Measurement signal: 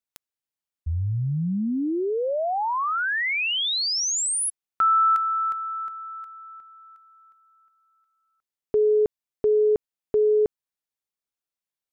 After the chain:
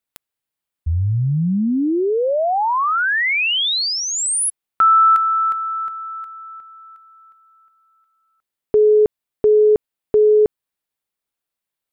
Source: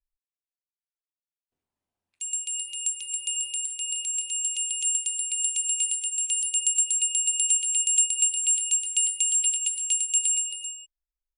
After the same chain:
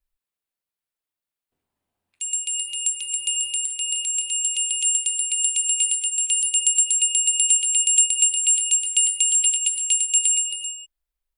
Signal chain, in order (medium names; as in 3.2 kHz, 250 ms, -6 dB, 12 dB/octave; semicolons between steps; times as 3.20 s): peaking EQ 6 kHz -5.5 dB 0.7 oct; trim +7 dB